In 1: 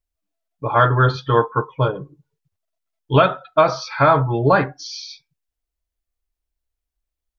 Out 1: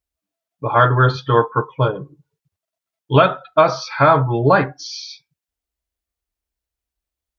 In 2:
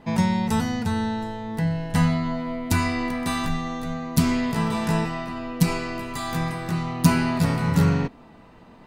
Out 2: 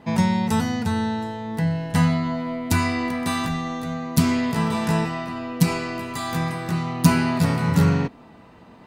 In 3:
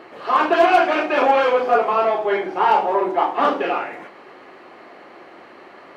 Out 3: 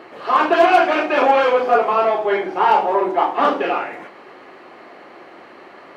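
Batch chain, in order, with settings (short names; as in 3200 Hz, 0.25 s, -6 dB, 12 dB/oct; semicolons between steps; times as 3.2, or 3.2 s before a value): HPF 54 Hz; gain +1.5 dB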